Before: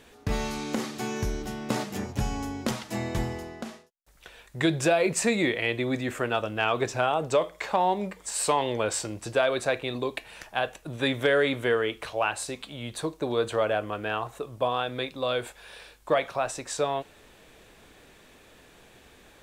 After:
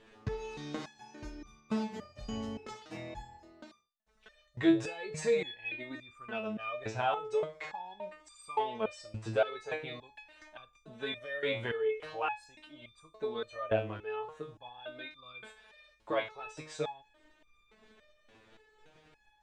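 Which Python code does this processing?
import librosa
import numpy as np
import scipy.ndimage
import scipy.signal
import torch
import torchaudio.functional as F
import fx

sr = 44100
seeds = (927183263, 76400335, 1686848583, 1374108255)

p1 = fx.level_steps(x, sr, step_db=9)
p2 = x + (p1 * librosa.db_to_amplitude(2.0))
p3 = fx.air_absorb(p2, sr, metres=110.0)
y = fx.resonator_held(p3, sr, hz=3.5, low_hz=110.0, high_hz=1200.0)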